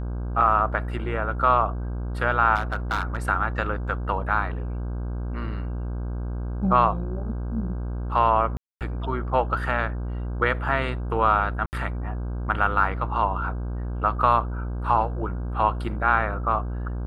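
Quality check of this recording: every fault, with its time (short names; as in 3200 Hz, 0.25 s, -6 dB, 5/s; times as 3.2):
buzz 60 Hz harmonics 27 -29 dBFS
2.55–3.17 clipped -19 dBFS
8.57–8.81 gap 0.238 s
11.66–11.73 gap 69 ms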